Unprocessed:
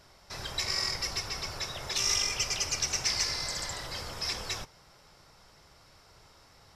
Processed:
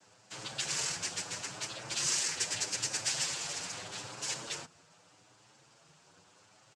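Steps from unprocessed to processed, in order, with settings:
cochlear-implant simulation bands 8
barber-pole flanger 7.8 ms +0.79 Hz

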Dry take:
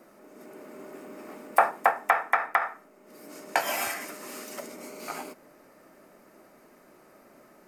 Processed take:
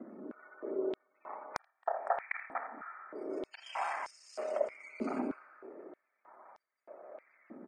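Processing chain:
reversed piece by piece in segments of 30 ms
gate on every frequency bin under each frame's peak −20 dB strong
downsampling to 22,050 Hz
on a send at −18 dB: convolution reverb RT60 3.0 s, pre-delay 4 ms
on the sum: healed spectral selection 0:01.84–0:02.23, 1,900–5,200 Hz
high-shelf EQ 3,200 Hz −10 dB
downward compressor 5 to 1, threshold −35 dBFS, peak gain reduction 17.5 dB
spectral tilt −2 dB per octave
single-tap delay 82 ms −12 dB
high-pass on a step sequencer 3.2 Hz 250–5,300 Hz
level −1 dB

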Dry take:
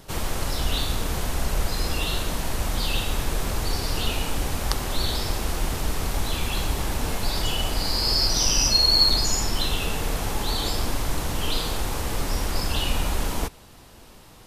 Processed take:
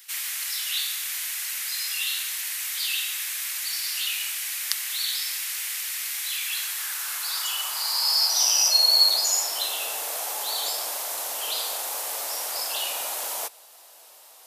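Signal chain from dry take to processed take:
sub-octave generator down 2 octaves, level +1 dB
RIAA equalisation recording
high-pass filter sweep 2,000 Hz → 630 Hz, 0:06.37–0:08.89
level −7 dB

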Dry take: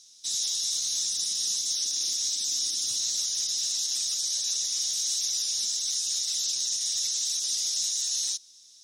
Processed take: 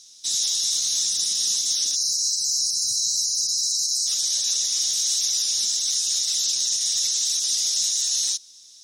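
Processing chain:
time-frequency box erased 0:01.96–0:04.07, 200–3,900 Hz
level +5.5 dB

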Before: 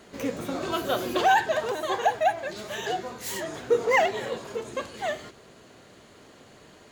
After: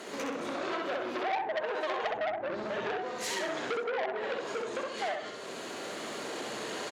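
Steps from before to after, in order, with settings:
camcorder AGC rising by 6.1 dB per second
high-pass filter 290 Hz 12 dB per octave
treble cut that deepens with the level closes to 680 Hz, closed at −19.5 dBFS
0:02.04–0:02.92: spectral tilt −4.5 dB per octave
downward compressor 2.5 to 1, threshold −45 dBFS, peak gain reduction 18 dB
repeating echo 65 ms, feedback 38%, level −3 dB
saturating transformer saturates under 2,000 Hz
level +8.5 dB

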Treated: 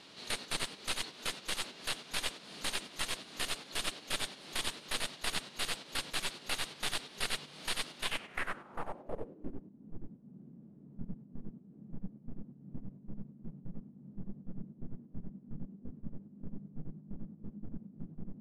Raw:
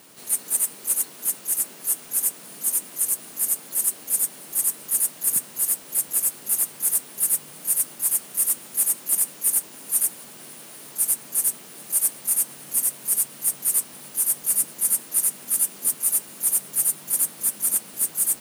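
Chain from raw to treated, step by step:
stylus tracing distortion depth 0.023 ms
noise gate −31 dBFS, range −11 dB
downward compressor 6 to 1, threshold −32 dBFS, peak gain reduction 14.5 dB
harmonic and percussive parts rebalanced percussive −3 dB
low-pass filter sweep 4,000 Hz → 200 Hz, 0:07.97–0:09.73
level +8.5 dB

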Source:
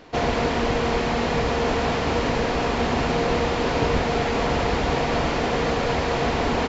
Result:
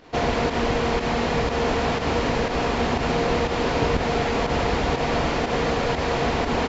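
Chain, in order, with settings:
fake sidechain pumping 121 BPM, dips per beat 1, −8 dB, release 89 ms

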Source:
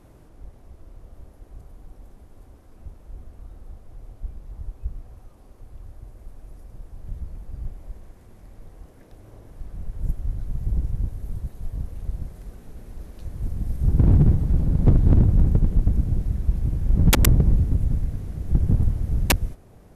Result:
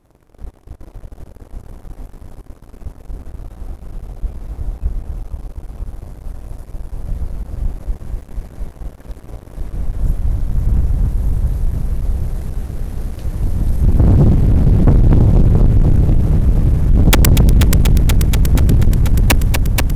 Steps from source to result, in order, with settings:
echo machine with several playback heads 241 ms, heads first and second, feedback 75%, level −11 dB
leveller curve on the samples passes 3

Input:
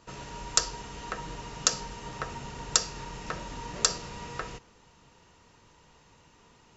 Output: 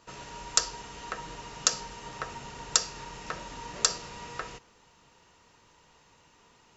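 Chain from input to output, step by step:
low-shelf EQ 330 Hz −6.5 dB

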